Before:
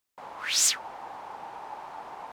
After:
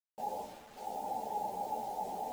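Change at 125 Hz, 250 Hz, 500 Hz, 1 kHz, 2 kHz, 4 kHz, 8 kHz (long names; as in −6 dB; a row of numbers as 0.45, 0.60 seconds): can't be measured, +5.0 dB, +4.5 dB, +2.5 dB, −24.0 dB, −27.0 dB, −28.5 dB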